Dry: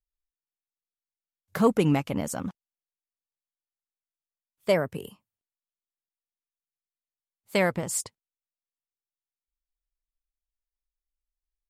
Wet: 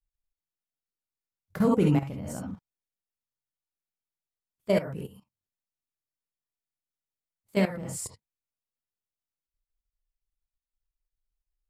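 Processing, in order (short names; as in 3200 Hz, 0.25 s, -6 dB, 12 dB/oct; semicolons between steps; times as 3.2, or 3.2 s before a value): low shelf 400 Hz +12 dB; non-linear reverb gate 90 ms rising, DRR -1.5 dB; level quantiser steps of 15 dB; gain -6 dB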